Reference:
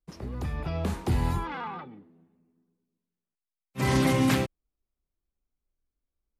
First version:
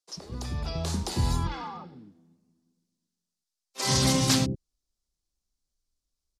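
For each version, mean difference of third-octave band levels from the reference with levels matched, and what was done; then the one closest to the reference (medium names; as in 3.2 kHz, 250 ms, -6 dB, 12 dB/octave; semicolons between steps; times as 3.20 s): 4.5 dB: resonant high shelf 3.4 kHz +13.5 dB, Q 1.5; spectral replace 1.57–2.20 s, 1.3–5.5 kHz both; distance through air 51 m; bands offset in time highs, lows 90 ms, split 380 Hz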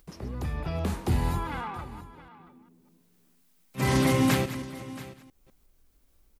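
3.0 dB: chunks repeated in reverse 201 ms, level -13 dB; treble shelf 11 kHz +6 dB; upward compressor, threshold -45 dBFS; on a send: delay 678 ms -17 dB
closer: second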